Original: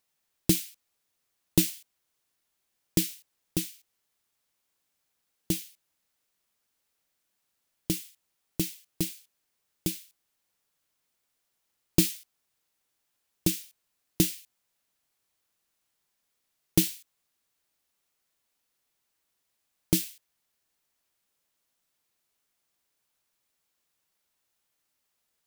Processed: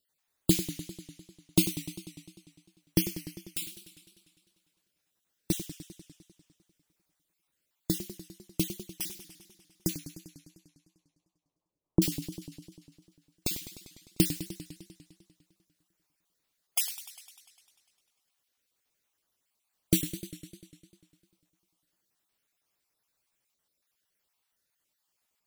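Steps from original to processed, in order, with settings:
time-frequency cells dropped at random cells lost 36%
0:09.96–0:12.02: elliptic low-pass filter 1,100 Hz, stop band 40 dB
feedback echo with a swinging delay time 100 ms, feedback 72%, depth 161 cents, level −12 dB

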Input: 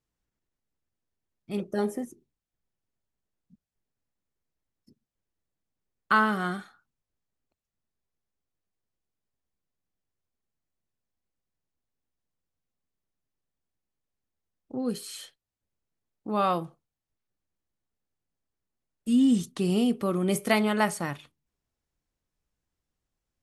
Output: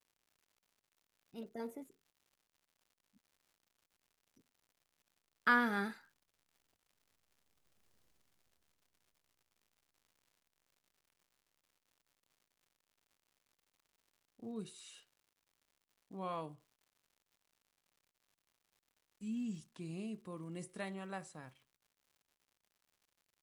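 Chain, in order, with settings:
source passing by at 0:07.96, 36 m/s, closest 11 metres
surface crackle 170 per second −72 dBFS
level +11.5 dB

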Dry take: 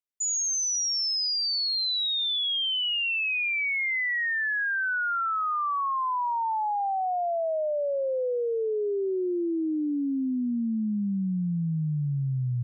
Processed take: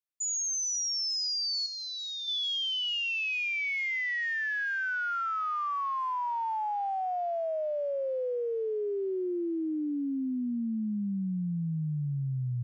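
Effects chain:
0:01.66–0:02.28: high-frequency loss of the air 230 metres
on a send: delay with a high-pass on its return 446 ms, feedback 75%, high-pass 3,000 Hz, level −21 dB
on the sum: level −4 dB

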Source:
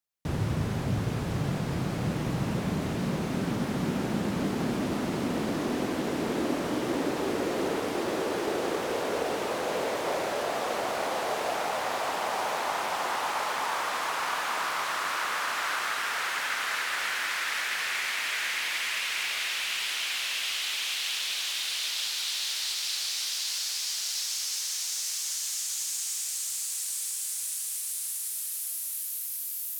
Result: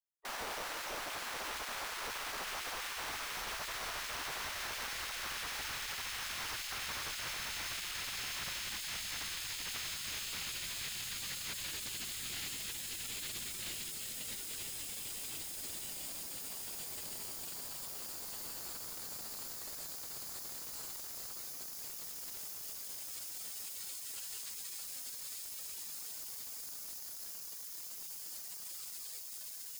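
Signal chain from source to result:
sample-rate reduction 5,800 Hz, jitter 0%
gate on every frequency bin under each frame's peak −20 dB weak
wave folding −37 dBFS
level +2 dB

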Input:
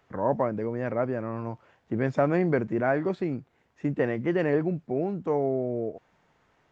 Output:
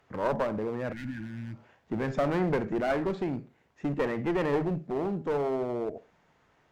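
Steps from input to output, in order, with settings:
four-comb reverb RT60 0.31 s, DRR 13.5 dB
asymmetric clip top −28 dBFS
healed spectral selection 0:00.95–0:01.67, 340–1,400 Hz after

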